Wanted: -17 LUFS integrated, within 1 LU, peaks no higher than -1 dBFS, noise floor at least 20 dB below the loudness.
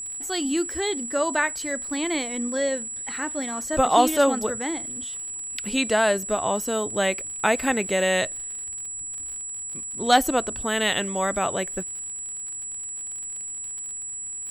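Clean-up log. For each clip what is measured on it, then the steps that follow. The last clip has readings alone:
ticks 54/s; steady tone 7800 Hz; tone level -31 dBFS; loudness -25.0 LUFS; peak -5.0 dBFS; loudness target -17.0 LUFS
-> de-click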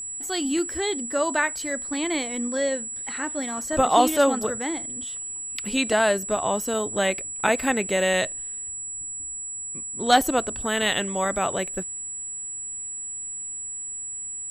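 ticks 0.069/s; steady tone 7800 Hz; tone level -31 dBFS
-> notch 7800 Hz, Q 30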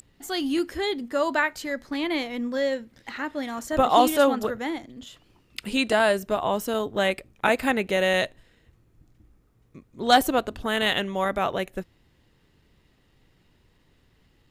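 steady tone none; loudness -25.0 LUFS; peak -5.5 dBFS; loudness target -17.0 LUFS
-> gain +8 dB; limiter -1 dBFS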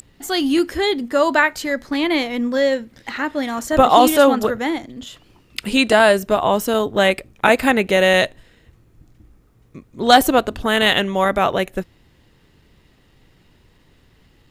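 loudness -17.0 LUFS; peak -1.0 dBFS; noise floor -55 dBFS

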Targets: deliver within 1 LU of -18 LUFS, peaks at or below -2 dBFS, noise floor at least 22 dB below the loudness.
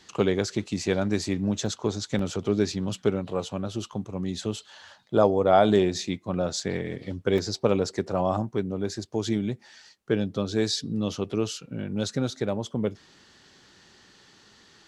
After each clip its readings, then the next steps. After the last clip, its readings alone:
dropouts 4; longest dropout 3.1 ms; loudness -27.0 LUFS; peak -7.0 dBFS; loudness target -18.0 LUFS
-> interpolate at 1.66/2.19/6.6/7.38, 3.1 ms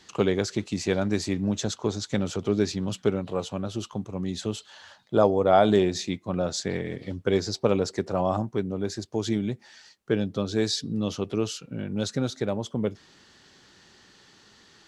dropouts 0; loudness -27.0 LUFS; peak -7.0 dBFS; loudness target -18.0 LUFS
-> gain +9 dB; limiter -2 dBFS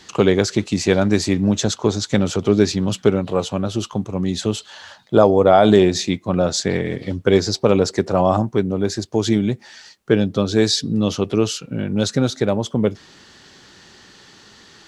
loudness -18.5 LUFS; peak -2.0 dBFS; noise floor -48 dBFS

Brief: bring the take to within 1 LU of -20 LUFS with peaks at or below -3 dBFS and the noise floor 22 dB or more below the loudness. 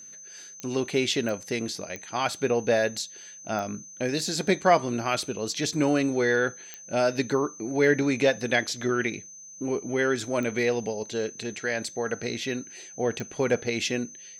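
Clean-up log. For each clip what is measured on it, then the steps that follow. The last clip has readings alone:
clicks 7; steady tone 6200 Hz; tone level -43 dBFS; loudness -27.0 LUFS; peak -8.0 dBFS; loudness target -20.0 LUFS
-> de-click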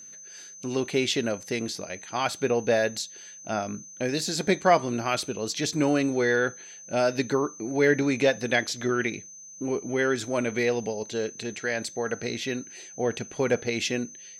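clicks 0; steady tone 6200 Hz; tone level -43 dBFS
-> notch 6200 Hz, Q 30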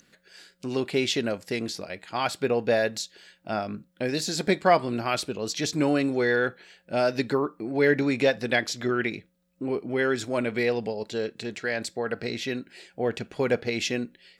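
steady tone none; loudness -27.0 LUFS; peak -8.0 dBFS; loudness target -20.0 LUFS
-> gain +7 dB; limiter -3 dBFS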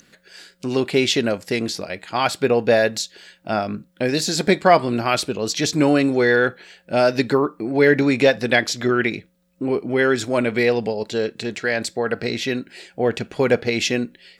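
loudness -20.0 LUFS; peak -3.0 dBFS; noise floor -58 dBFS

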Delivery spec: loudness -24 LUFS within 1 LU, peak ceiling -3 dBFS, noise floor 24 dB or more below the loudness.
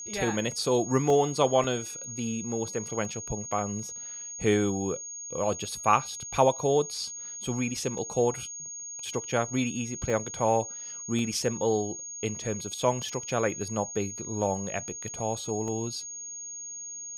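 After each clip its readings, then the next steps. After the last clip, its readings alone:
dropouts 8; longest dropout 1.5 ms; steady tone 6600 Hz; tone level -37 dBFS; loudness -29.0 LUFS; peak -7.5 dBFS; loudness target -24.0 LUFS
-> interpolate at 1.1/1.64/3.05/7.98/10.1/11.19/13.09/15.68, 1.5 ms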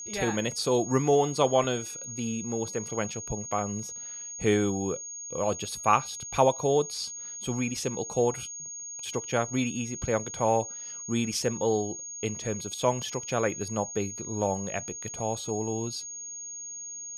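dropouts 0; steady tone 6600 Hz; tone level -37 dBFS
-> notch 6600 Hz, Q 30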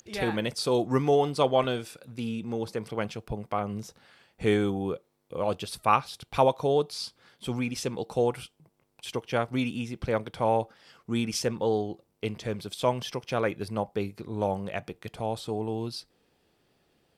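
steady tone none; loudness -29.5 LUFS; peak -7.5 dBFS; loudness target -24.0 LUFS
-> gain +5.5 dB; limiter -3 dBFS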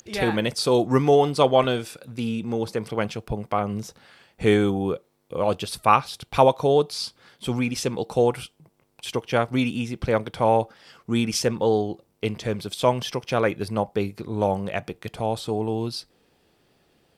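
loudness -24.0 LUFS; peak -3.0 dBFS; noise floor -65 dBFS

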